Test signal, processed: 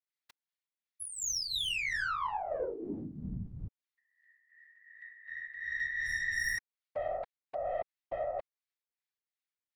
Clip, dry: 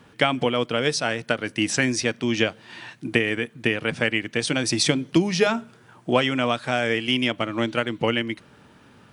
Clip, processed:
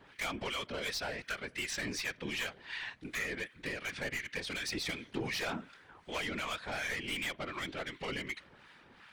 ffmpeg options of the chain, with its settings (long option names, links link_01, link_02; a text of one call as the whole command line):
ffmpeg -i in.wav -filter_complex "[0:a]acrossover=split=1000[link_01][link_02];[link_01]aeval=exprs='val(0)*(1-0.7/2+0.7/2*cos(2*PI*2.7*n/s))':channel_layout=same[link_03];[link_02]aeval=exprs='val(0)*(1-0.7/2-0.7/2*cos(2*PI*2.7*n/s))':channel_layout=same[link_04];[link_03][link_04]amix=inputs=2:normalize=0,equalizer=frequency=500:width_type=o:width=1:gain=3,equalizer=frequency=1000:width_type=o:width=1:gain=5,equalizer=frequency=2000:width_type=o:width=1:gain=12,equalizer=frequency=4000:width_type=o:width=1:gain=9,aeval=exprs='(tanh(7.94*val(0)+0.2)-tanh(0.2))/7.94':channel_layout=same,alimiter=limit=-21dB:level=0:latency=1:release=95,afftfilt=real='hypot(re,im)*cos(2*PI*random(0))':imag='hypot(re,im)*sin(2*PI*random(1))':win_size=512:overlap=0.75,volume=-3.5dB" out.wav